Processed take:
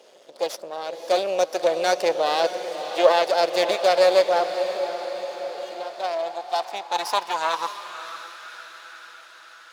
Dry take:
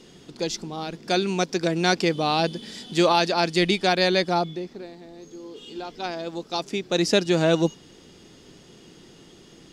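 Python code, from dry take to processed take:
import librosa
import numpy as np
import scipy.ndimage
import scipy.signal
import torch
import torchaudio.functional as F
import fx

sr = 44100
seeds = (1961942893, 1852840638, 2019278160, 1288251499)

p1 = fx.spec_quant(x, sr, step_db=15)
p2 = fx.bandpass_edges(p1, sr, low_hz=220.0, high_hz=4700.0, at=(2.74, 3.26))
p3 = np.maximum(p2, 0.0)
p4 = p3 + fx.echo_diffused(p3, sr, ms=583, feedback_pct=60, wet_db=-10.0, dry=0)
y = fx.filter_sweep_highpass(p4, sr, from_hz=560.0, to_hz=1400.0, start_s=5.71, end_s=8.52, q=5.4)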